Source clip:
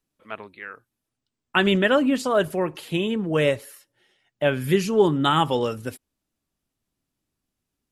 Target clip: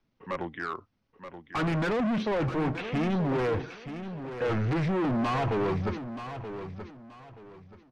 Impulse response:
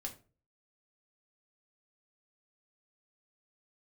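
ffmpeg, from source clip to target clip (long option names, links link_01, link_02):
-filter_complex "[0:a]aresample=16000,asoftclip=type=tanh:threshold=-20.5dB,aresample=44100,asetrate=37084,aresample=44100,atempo=1.18921,acrossover=split=180|3200[link_01][link_02][link_03];[link_03]acompressor=threshold=-56dB:ratio=6[link_04];[link_01][link_02][link_04]amix=inputs=3:normalize=0,volume=33.5dB,asoftclip=hard,volume=-33.5dB,aemphasis=mode=reproduction:type=75fm,aecho=1:1:928|1856|2784:0.299|0.0836|0.0234,volume=7dB"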